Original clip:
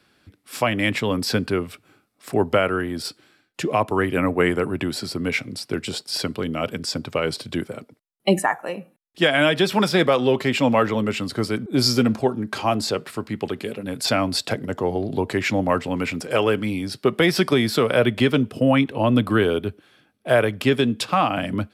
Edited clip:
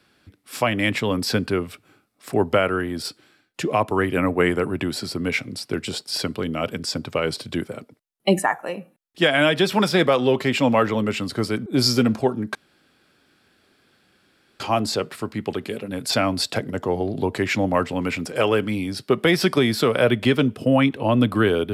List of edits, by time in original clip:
0:12.55: splice in room tone 2.05 s

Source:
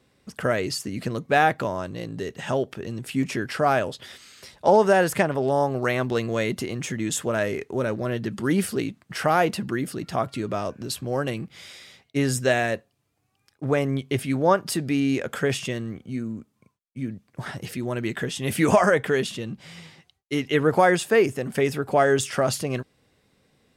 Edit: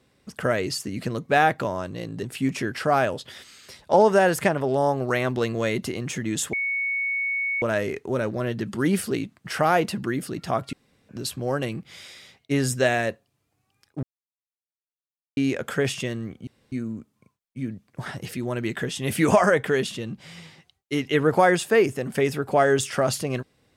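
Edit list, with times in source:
0:02.23–0:02.97: remove
0:07.27: insert tone 2,220 Hz −23 dBFS 1.09 s
0:10.38–0:10.74: fill with room tone
0:13.68–0:15.02: silence
0:16.12: splice in room tone 0.25 s

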